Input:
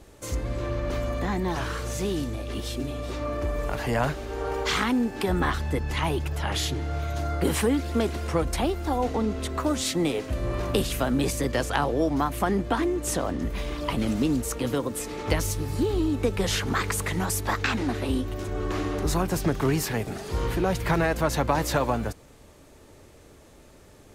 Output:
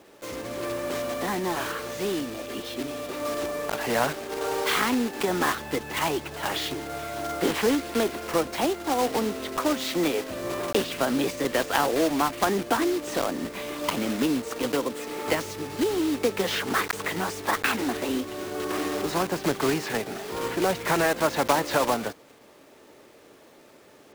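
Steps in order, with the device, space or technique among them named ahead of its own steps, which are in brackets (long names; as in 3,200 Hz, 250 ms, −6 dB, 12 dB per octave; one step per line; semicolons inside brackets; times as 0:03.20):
early digital voice recorder (band-pass filter 260–3,800 Hz; one scale factor per block 3 bits)
level +2 dB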